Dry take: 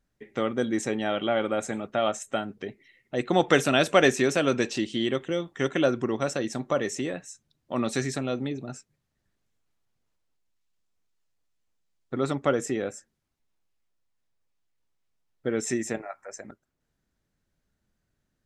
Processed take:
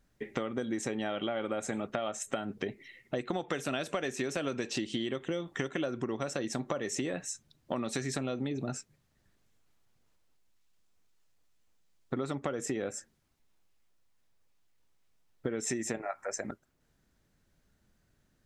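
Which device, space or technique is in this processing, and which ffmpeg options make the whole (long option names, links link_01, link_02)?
serial compression, peaks first: -af "acompressor=threshold=-31dB:ratio=6,acompressor=threshold=-38dB:ratio=2.5,volume=6dB"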